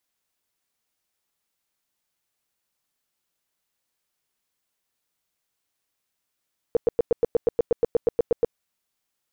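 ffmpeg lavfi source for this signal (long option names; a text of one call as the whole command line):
ffmpeg -f lavfi -i "aevalsrc='0.188*sin(2*PI*470*mod(t,0.12))*lt(mod(t,0.12),8/470)':duration=1.8:sample_rate=44100" out.wav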